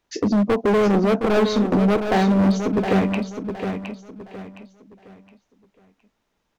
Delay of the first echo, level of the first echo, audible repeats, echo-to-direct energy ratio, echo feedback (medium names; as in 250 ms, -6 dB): 715 ms, -7.5 dB, 3, -7.0 dB, 32%